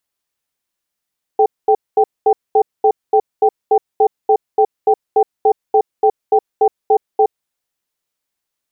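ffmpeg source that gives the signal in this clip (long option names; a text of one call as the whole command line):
ffmpeg -f lavfi -i "aevalsrc='0.299*(sin(2*PI*430*t)+sin(2*PI*782*t))*clip(min(mod(t,0.29),0.07-mod(t,0.29))/0.005,0,1)':duration=6:sample_rate=44100" out.wav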